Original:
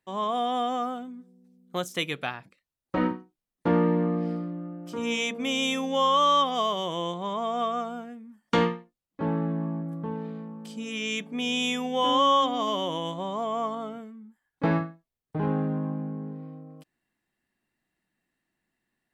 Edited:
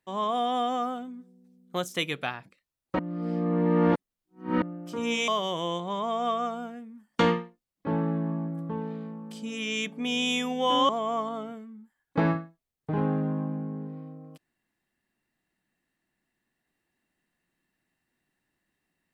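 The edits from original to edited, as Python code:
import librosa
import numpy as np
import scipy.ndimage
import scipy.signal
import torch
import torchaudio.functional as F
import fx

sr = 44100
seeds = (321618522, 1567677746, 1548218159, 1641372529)

y = fx.edit(x, sr, fx.reverse_span(start_s=2.99, length_s=1.63),
    fx.cut(start_s=5.28, length_s=1.34),
    fx.cut(start_s=12.23, length_s=1.12), tone=tone)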